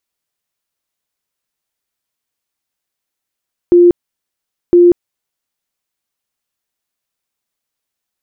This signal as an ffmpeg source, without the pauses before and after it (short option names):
-f lavfi -i "aevalsrc='0.708*sin(2*PI*350*mod(t,1.01))*lt(mod(t,1.01),66/350)':d=2.02:s=44100"